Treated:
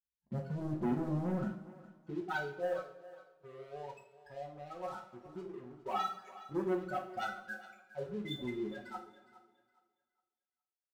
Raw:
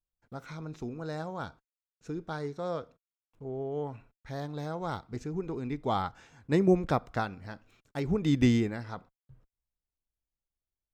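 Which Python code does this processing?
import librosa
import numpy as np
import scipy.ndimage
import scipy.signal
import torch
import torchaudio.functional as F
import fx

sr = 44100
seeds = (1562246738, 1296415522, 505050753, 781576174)

p1 = fx.peak_eq(x, sr, hz=63.0, db=13.0, octaves=0.42)
p2 = p1 + 0.75 * np.pad(p1, (int(5.4 * sr / 1000.0), 0))[:len(p1)]
p3 = fx.level_steps(p2, sr, step_db=10)
p4 = fx.spec_topn(p3, sr, count=8)
p5 = fx.filter_sweep_bandpass(p4, sr, from_hz=250.0, to_hz=3000.0, start_s=1.34, end_s=2.83, q=2.4)
p6 = fx.leveller(p5, sr, passes=3)
p7 = p6 + fx.echo_thinned(p6, sr, ms=413, feedback_pct=26, hz=350.0, wet_db=-16.0, dry=0)
p8 = fx.rev_double_slope(p7, sr, seeds[0], early_s=0.46, late_s=1.8, knee_db=-18, drr_db=-1.0)
y = p8 * librosa.db_to_amplitude(6.5)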